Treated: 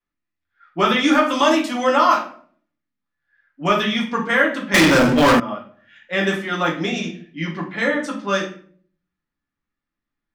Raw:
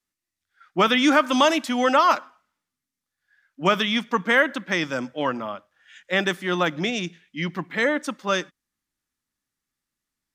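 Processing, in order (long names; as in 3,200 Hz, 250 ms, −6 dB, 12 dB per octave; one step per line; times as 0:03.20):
low-pass that shuts in the quiet parts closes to 2,600 Hz, open at −19.5 dBFS
rectangular room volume 49 cubic metres, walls mixed, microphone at 0.79 metres
0:04.74–0:05.40: leveller curve on the samples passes 5
level −2.5 dB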